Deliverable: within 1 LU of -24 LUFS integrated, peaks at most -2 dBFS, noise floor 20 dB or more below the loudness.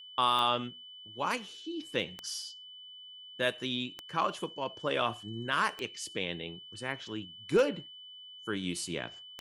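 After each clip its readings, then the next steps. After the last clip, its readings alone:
clicks 6; steady tone 3000 Hz; tone level -47 dBFS; loudness -33.5 LUFS; peak -16.0 dBFS; loudness target -24.0 LUFS
-> de-click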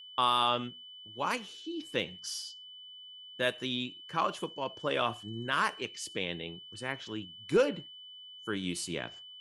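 clicks 0; steady tone 3000 Hz; tone level -47 dBFS
-> notch 3000 Hz, Q 30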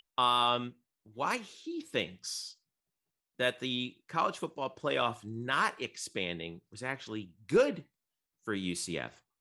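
steady tone none; loudness -33.5 LUFS; peak -16.0 dBFS; loudness target -24.0 LUFS
-> gain +9.5 dB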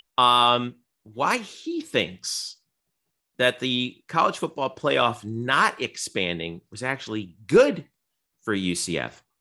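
loudness -24.0 LUFS; peak -6.5 dBFS; noise floor -79 dBFS

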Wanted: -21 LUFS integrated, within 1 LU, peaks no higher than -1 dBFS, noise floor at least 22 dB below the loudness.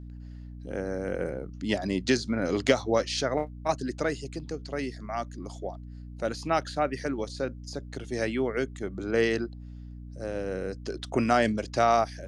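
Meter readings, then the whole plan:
hum 60 Hz; harmonics up to 300 Hz; hum level -39 dBFS; loudness -29.5 LUFS; peak -8.5 dBFS; loudness target -21.0 LUFS
-> de-hum 60 Hz, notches 5; gain +8.5 dB; limiter -1 dBFS

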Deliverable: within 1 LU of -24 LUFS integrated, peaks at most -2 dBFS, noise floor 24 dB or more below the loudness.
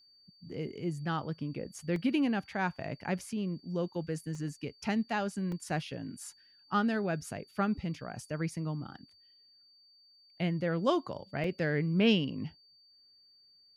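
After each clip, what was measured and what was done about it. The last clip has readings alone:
dropouts 4; longest dropout 2.1 ms; steady tone 4600 Hz; tone level -60 dBFS; loudness -33.5 LUFS; peak -13.5 dBFS; loudness target -24.0 LUFS
-> interpolate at 1.96/4.35/5.52/11.44, 2.1 ms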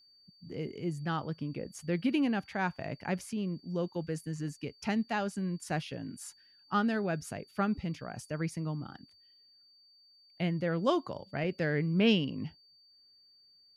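dropouts 0; steady tone 4600 Hz; tone level -60 dBFS
-> notch 4600 Hz, Q 30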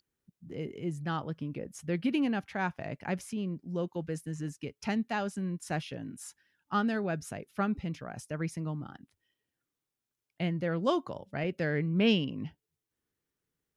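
steady tone none; loudness -33.5 LUFS; peak -13.5 dBFS; loudness target -24.0 LUFS
-> gain +9.5 dB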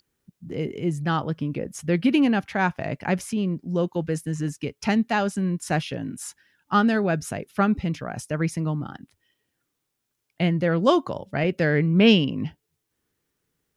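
loudness -24.0 LUFS; peak -4.0 dBFS; noise floor -79 dBFS

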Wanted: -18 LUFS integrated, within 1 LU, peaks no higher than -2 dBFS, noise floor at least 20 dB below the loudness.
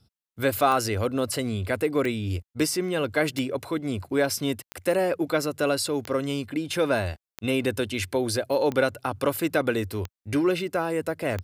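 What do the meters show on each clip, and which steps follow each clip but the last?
clicks 9; loudness -26.5 LUFS; peak -8.5 dBFS; loudness target -18.0 LUFS
-> de-click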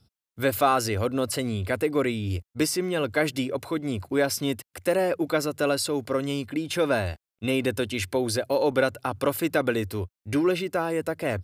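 clicks 0; loudness -26.5 LUFS; peak -8.5 dBFS; loudness target -18.0 LUFS
-> gain +8.5 dB; limiter -2 dBFS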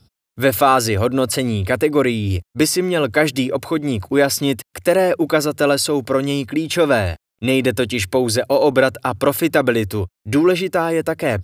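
loudness -18.0 LUFS; peak -2.0 dBFS; noise floor -83 dBFS

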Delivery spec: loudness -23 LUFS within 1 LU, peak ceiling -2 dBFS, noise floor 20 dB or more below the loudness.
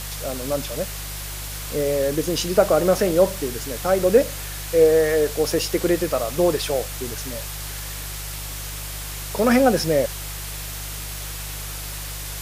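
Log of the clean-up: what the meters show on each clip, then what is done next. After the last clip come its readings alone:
hum 50 Hz; harmonics up to 150 Hz; hum level -32 dBFS; noise floor -32 dBFS; noise floor target -43 dBFS; loudness -22.5 LUFS; peak -3.0 dBFS; loudness target -23.0 LUFS
-> de-hum 50 Hz, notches 3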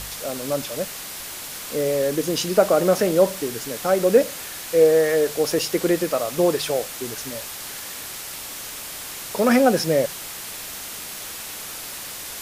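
hum none; noise floor -35 dBFS; noise floor target -43 dBFS
-> denoiser 8 dB, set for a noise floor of -35 dBFS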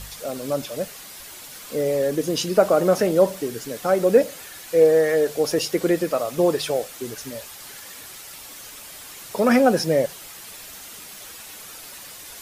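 noise floor -41 dBFS; noise floor target -42 dBFS
-> denoiser 6 dB, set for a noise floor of -41 dBFS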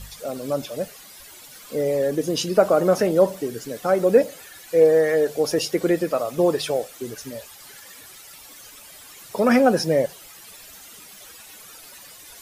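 noise floor -45 dBFS; loudness -21.0 LUFS; peak -3.0 dBFS; loudness target -23.0 LUFS
-> gain -2 dB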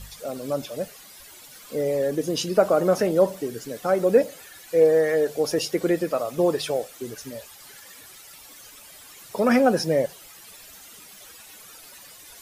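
loudness -23.0 LUFS; peak -5.0 dBFS; noise floor -47 dBFS

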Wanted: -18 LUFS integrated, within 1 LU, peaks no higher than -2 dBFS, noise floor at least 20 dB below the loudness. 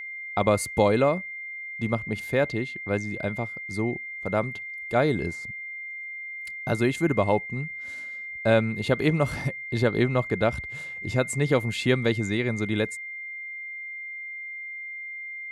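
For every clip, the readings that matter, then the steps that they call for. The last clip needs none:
steady tone 2100 Hz; tone level -34 dBFS; loudness -27.0 LUFS; peak -7.5 dBFS; loudness target -18.0 LUFS
-> notch 2100 Hz, Q 30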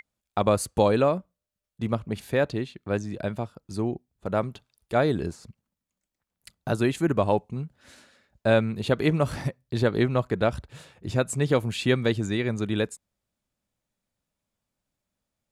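steady tone none; loudness -26.5 LUFS; peak -7.5 dBFS; loudness target -18.0 LUFS
-> gain +8.5 dB; limiter -2 dBFS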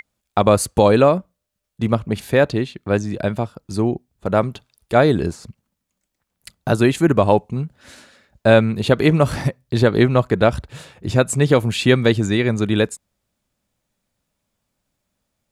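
loudness -18.0 LUFS; peak -2.0 dBFS; noise floor -79 dBFS

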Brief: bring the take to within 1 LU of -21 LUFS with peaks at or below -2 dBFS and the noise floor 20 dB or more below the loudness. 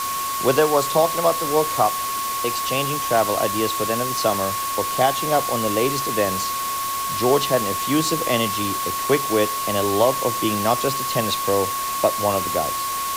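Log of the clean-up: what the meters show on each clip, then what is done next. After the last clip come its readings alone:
steady tone 1100 Hz; tone level -24 dBFS; noise floor -25 dBFS; noise floor target -41 dBFS; loudness -20.5 LUFS; peak -5.5 dBFS; loudness target -21.0 LUFS
-> notch 1100 Hz, Q 30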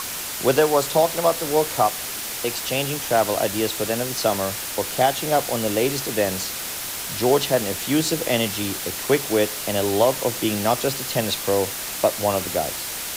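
steady tone none; noise floor -30 dBFS; noise floor target -42 dBFS
-> denoiser 12 dB, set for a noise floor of -30 dBFS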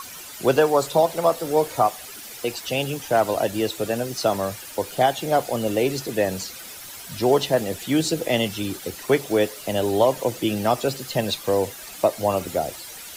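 noise floor -39 dBFS; noise floor target -43 dBFS
-> denoiser 6 dB, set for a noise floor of -39 dBFS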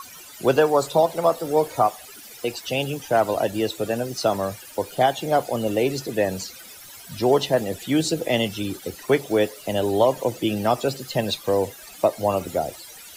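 noise floor -43 dBFS; loudness -23.0 LUFS; peak -6.5 dBFS; loudness target -21.0 LUFS
-> gain +2 dB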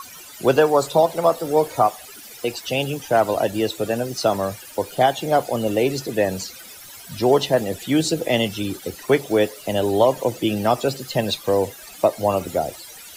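loudness -21.0 LUFS; peak -4.5 dBFS; noise floor -41 dBFS

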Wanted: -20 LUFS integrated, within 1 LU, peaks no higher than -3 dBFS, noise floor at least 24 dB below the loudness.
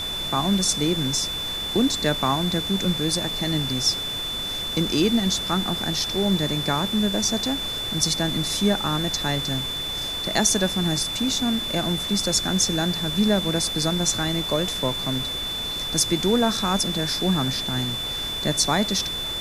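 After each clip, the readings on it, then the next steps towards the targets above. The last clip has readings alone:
steady tone 3500 Hz; tone level -27 dBFS; noise floor -29 dBFS; noise floor target -47 dBFS; loudness -22.5 LUFS; peak -5.0 dBFS; loudness target -20.0 LUFS
-> notch 3500 Hz, Q 30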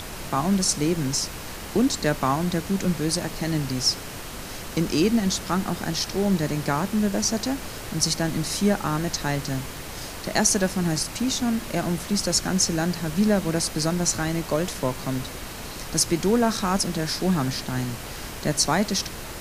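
steady tone none; noise floor -36 dBFS; noise floor target -49 dBFS
-> noise print and reduce 13 dB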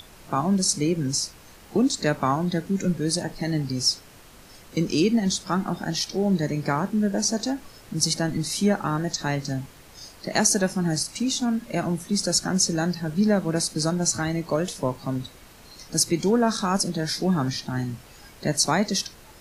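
noise floor -49 dBFS; loudness -24.5 LUFS; peak -5.0 dBFS; loudness target -20.0 LUFS
-> gain +4.5 dB; limiter -3 dBFS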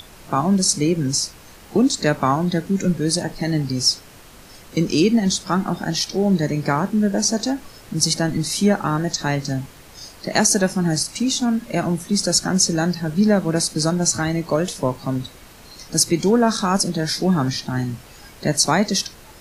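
loudness -20.0 LUFS; peak -3.0 dBFS; noise floor -44 dBFS

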